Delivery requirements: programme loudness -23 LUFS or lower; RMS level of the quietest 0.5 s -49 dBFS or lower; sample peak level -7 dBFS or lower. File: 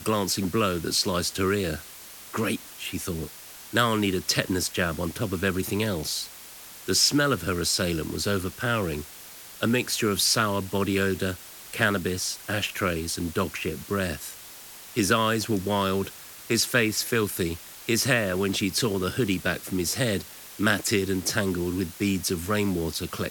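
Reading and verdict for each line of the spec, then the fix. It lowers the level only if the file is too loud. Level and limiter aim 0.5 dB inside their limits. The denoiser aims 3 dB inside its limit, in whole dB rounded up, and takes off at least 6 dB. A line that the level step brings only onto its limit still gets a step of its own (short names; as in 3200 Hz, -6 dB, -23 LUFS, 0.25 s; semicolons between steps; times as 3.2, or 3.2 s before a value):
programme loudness -26.0 LUFS: OK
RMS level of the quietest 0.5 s -44 dBFS: fail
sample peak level -5.0 dBFS: fail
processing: denoiser 8 dB, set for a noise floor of -44 dBFS; limiter -7.5 dBFS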